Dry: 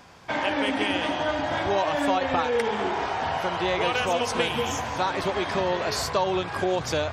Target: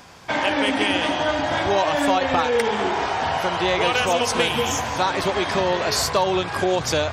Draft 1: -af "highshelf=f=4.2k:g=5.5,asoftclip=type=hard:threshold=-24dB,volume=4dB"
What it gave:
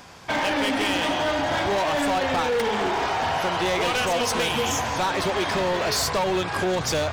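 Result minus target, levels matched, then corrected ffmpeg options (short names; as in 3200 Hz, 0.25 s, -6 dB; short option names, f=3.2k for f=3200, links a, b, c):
hard clip: distortion +23 dB
-af "highshelf=f=4.2k:g=5.5,asoftclip=type=hard:threshold=-14dB,volume=4dB"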